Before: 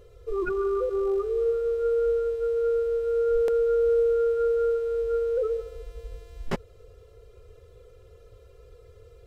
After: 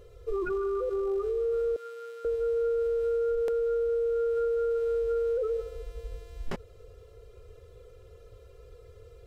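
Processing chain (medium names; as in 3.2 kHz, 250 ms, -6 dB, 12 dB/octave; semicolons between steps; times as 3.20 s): 1.76–2.25 s: high-pass 1.4 kHz 12 dB/octave; peak limiter -24 dBFS, peak gain reduction 9.5 dB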